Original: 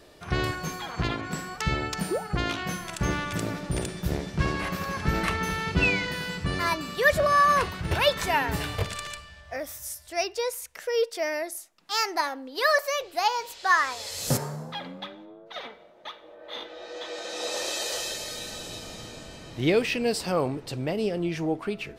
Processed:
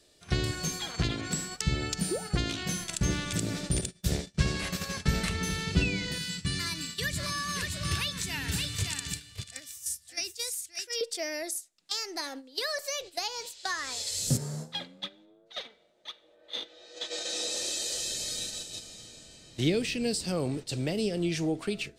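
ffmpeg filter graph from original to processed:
-filter_complex "[0:a]asettb=1/sr,asplit=3[a][b][c];[a]atrim=end=3.814[d];[b]atrim=start=3.81:end=5.35,asetpts=PTS-STARTPTS,afade=t=in:d=0.004:c=qsin,afade=t=out:st=1.536:d=0.004:c=qsin,bandreject=f=320:w=5.1,agate=range=-33dB:threshold=-29dB:ratio=3:release=100:detection=peak[e];[c]atrim=start=5.346[f];[d][e]acrossfade=d=0.004:c1=hsin:c2=qsin[g];[g][f]acrossfade=d=0.004:c1=qsin:c2=hsin,asettb=1/sr,asplit=3[h][i][j];[h]atrim=end=6.184[k];[i]atrim=start=6.18:end=11.01,asetpts=PTS-STARTPTS,afade=t=in:d=0.004:c=qsin,afade=t=out:st=4.826:d=0.004:c=qsin,highpass=81,equalizer=f=590:t=o:w=1.5:g=-14.5,aecho=1:1:570:0.473,atrim=end_sample=213003[l];[j]atrim=start=11.006[m];[k][l]acrossfade=d=0.004:c1=hsin:c2=qsin[n];[n][m]acrossfade=d=0.004:c1=qsin:c2=hsin,agate=range=-12dB:threshold=-36dB:ratio=16:detection=peak,equalizer=f=1k:t=o:w=1:g=-7,equalizer=f=4k:t=o:w=1:g=6,equalizer=f=8k:t=o:w=1:g=12,acrossover=split=330[o][p];[p]acompressor=threshold=-31dB:ratio=6[q];[o][q]amix=inputs=2:normalize=0"

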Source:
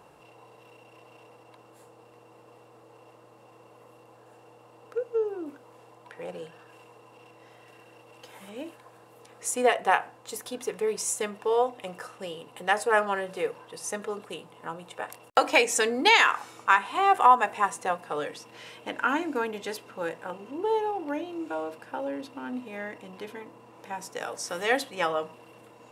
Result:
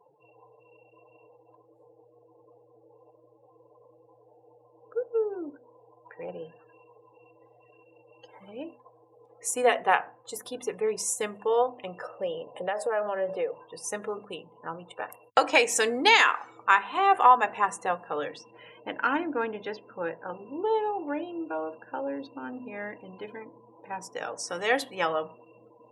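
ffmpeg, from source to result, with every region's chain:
-filter_complex "[0:a]asettb=1/sr,asplit=3[a][b][c];[a]atrim=end=12.024[d];[b]atrim=start=12.02:end=13.55,asetpts=PTS-STARTPTS,afade=t=in:d=0.004:c=qsin,afade=t=out:st=1.526:d=0.004:c=qsin,acompressor=threshold=-34dB:ratio=2.5:attack=3.2:release=140:knee=1:detection=peak,equalizer=f=580:t=o:w=0.58:g=12[e];[c]atrim=start=13.546[f];[d][e]acrossfade=d=0.004:c1=hsin:c2=qsin[g];[g][f]acrossfade=d=0.004:c1=qsin:c2=hsin,asettb=1/sr,asplit=3[h][i][j];[h]atrim=end=18.514[k];[i]atrim=start=18.51:end=20.34,asetpts=PTS-STARTPTS,afade=t=in:d=0.004:c=qsin,afade=t=out:st=1.826:d=0.004:c=qsin,bandreject=f=50:t=h:w=6,bandreject=f=100:t=h:w=6,bandreject=f=150:t=h:w=6,adynamicsmooth=sensitivity=3.5:basefreq=4k[l];[j]atrim=start=20.336[m];[k][l]acrossfade=d=0.004:c1=hsin:c2=qsin[n];[n][m]acrossfade=d=0.004:c1=qsin:c2=hsin,afftdn=nr=34:nf=-46,bandreject=f=50:t=h:w=6,bandreject=f=100:t=h:w=6,bandreject=f=150:t=h:w=6,bandreject=f=200:t=h:w=6,bandreject=f=250:t=h:w=6"

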